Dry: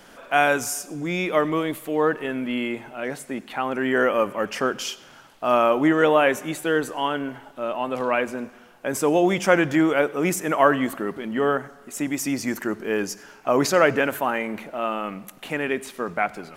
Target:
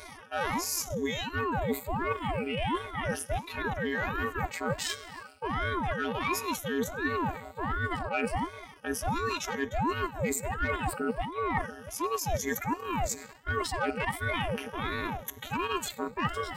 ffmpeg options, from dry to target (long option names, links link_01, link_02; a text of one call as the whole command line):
ffmpeg -i in.wav -af "afftfilt=real='re*pow(10,16/40*sin(2*PI*(1.1*log(max(b,1)*sr/1024/100)/log(2)-(0.35)*(pts-256)/sr)))':imag='im*pow(10,16/40*sin(2*PI*(1.1*log(max(b,1)*sr/1024/100)/log(2)-(0.35)*(pts-256)/sr)))':win_size=1024:overlap=0.75,acontrast=59,afftfilt=real='hypot(re,im)*cos(PI*b)':imag='0':win_size=512:overlap=0.75,areverse,acompressor=threshold=-24dB:ratio=10,areverse,aeval=exprs='val(0)*sin(2*PI*430*n/s+430*0.85/1.4*sin(2*PI*1.4*n/s))':channel_layout=same" out.wav